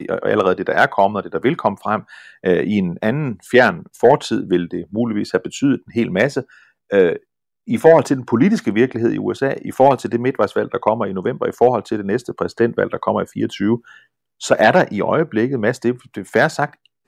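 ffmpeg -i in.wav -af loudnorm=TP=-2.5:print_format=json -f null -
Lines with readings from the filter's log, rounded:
"input_i" : "-17.7",
"input_tp" : "-1.6",
"input_lra" : "1.9",
"input_thresh" : "-28.0",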